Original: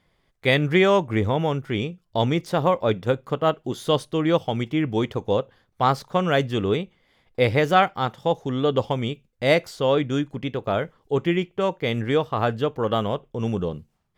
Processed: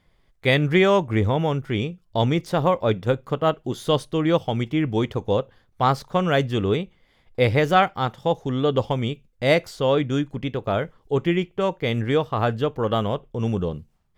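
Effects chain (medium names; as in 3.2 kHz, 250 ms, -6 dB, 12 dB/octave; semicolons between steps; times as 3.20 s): bass shelf 65 Hz +11 dB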